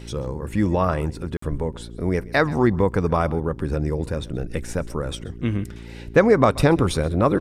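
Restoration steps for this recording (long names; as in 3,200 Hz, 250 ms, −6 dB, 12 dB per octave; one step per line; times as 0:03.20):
hum removal 57.5 Hz, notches 7
repair the gap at 0:01.37, 54 ms
echo removal 131 ms −21.5 dB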